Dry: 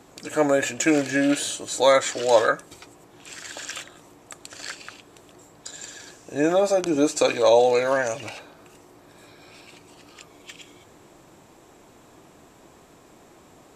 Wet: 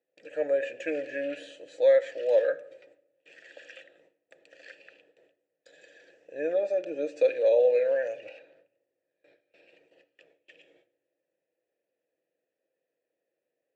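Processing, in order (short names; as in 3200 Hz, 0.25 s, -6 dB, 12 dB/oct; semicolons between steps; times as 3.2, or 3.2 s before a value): gate with hold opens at -37 dBFS; vowel filter e; high shelf 9100 Hz -10.5 dB; shoebox room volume 3500 m³, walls furnished, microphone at 0.61 m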